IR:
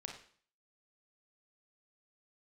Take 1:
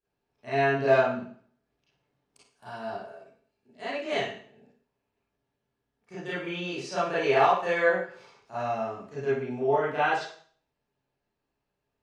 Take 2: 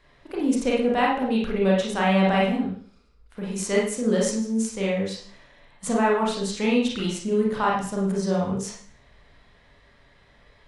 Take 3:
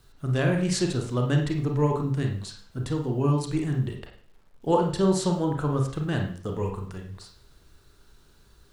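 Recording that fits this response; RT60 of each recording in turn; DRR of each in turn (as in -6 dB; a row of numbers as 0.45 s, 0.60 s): 3; 0.50 s, 0.50 s, 0.50 s; -12.0 dB, -4.0 dB, 1.5 dB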